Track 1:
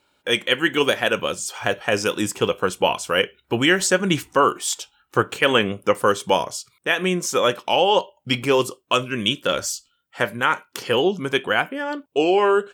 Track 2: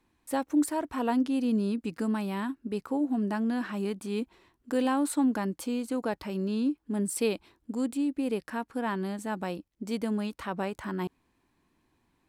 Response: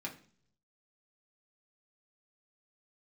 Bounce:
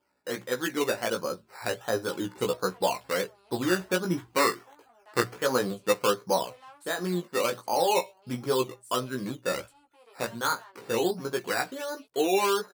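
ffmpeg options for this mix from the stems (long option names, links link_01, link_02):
-filter_complex "[0:a]lowpass=frequency=1600:width=0.5412,lowpass=frequency=1600:width=1.3066,acrusher=samples=11:mix=1:aa=0.000001:lfo=1:lforange=6.6:lforate=1.4,volume=-3.5dB[link_01];[1:a]asoftclip=type=tanh:threshold=-29dB,highpass=frequency=540:width=0.5412,highpass=frequency=540:width=1.3066,adelay=1750,volume=-10.5dB[link_02];[link_01][link_02]amix=inputs=2:normalize=0,lowshelf=frequency=69:gain=-9,bandreject=frequency=60:width_type=h:width=6,bandreject=frequency=120:width_type=h:width=6,flanger=delay=15.5:depth=2.2:speed=0.33"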